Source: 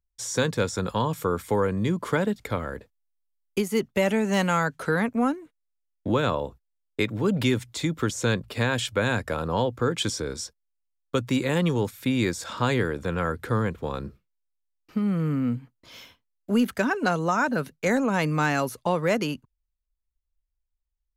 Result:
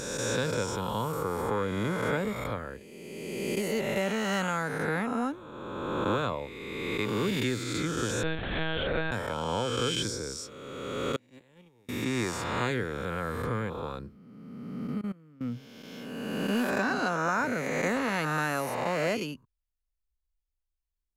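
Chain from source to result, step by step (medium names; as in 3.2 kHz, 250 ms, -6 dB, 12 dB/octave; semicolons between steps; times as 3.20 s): reverse spectral sustain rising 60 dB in 2.09 s; 8.23–9.12 s: monotone LPC vocoder at 8 kHz 160 Hz; 11.16–11.89 s: gate -16 dBFS, range -32 dB; 15.01–15.41 s: level held to a coarse grid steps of 23 dB; trim -8.5 dB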